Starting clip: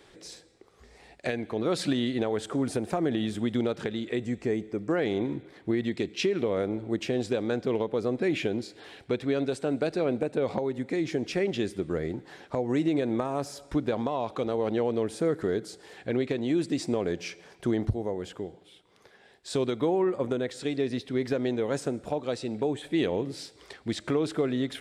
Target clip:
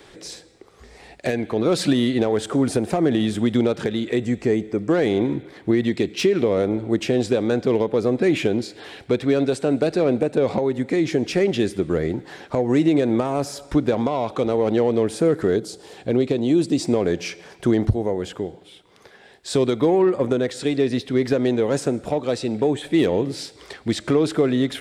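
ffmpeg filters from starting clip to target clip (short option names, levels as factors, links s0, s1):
-filter_complex "[0:a]asettb=1/sr,asplit=3[s0][s1][s2];[s0]atrim=end=15.564[s3];[s1]atrim=start=15.56:end=16.85,asetpts=PTS-STARTPTS,afade=t=in:d=0.004:c=qsin,afade=t=out:st=1.286:d=0.004:c=qsin,equalizer=f=1800:t=o:w=1:g=-8.5[s4];[s2]atrim=start=16.846[s5];[s3][s4]acrossfade=d=0.004:c1=hsin:c2=qsin[s6];[s6][s5]acrossfade=d=0.004:c1=qsin:c2=hsin,acrossover=split=630|5200[s7][s8][s9];[s8]asoftclip=type=tanh:threshold=0.0251[s10];[s7][s10][s9]amix=inputs=3:normalize=0,volume=2.66"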